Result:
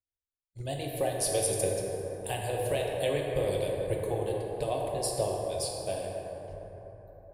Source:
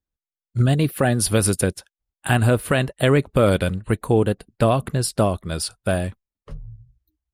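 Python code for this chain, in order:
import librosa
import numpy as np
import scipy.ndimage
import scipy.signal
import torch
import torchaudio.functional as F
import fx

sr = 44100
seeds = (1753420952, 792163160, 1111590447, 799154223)

y = fx.fixed_phaser(x, sr, hz=560.0, stages=4)
y = fx.hpss(y, sr, part='harmonic', gain_db=-11)
y = fx.rev_plate(y, sr, seeds[0], rt60_s=4.2, hf_ratio=0.35, predelay_ms=0, drr_db=-2.0)
y = y * librosa.db_to_amplitude(-8.5)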